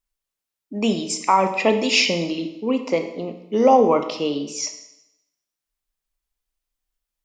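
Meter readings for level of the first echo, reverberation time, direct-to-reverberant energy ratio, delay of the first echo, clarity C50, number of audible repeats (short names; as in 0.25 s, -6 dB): none, 0.85 s, 6.5 dB, none, 9.5 dB, none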